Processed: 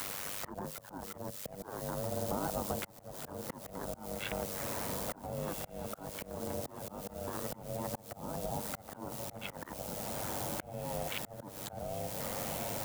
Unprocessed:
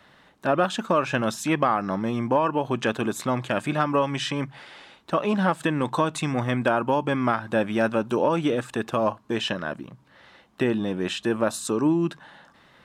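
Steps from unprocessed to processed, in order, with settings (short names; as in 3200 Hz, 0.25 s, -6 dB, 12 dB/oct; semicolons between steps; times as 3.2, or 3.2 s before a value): Wiener smoothing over 15 samples; ring modulator 340 Hz; treble ducked by the level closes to 770 Hz, closed at -23.5 dBFS; added noise blue -44 dBFS; AM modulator 99 Hz, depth 75%; limiter -22.5 dBFS, peak gain reduction 11 dB; compressor 6:1, threshold -34 dBFS, peak gain reduction 6.5 dB; HPF 95 Hz 6 dB/oct; high shelf 11000 Hz -4 dB; on a send: diffused feedback echo 1.452 s, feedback 62%, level -11 dB; on the sum: auto swell 0.746 s; three-band squash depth 70%; gain +10 dB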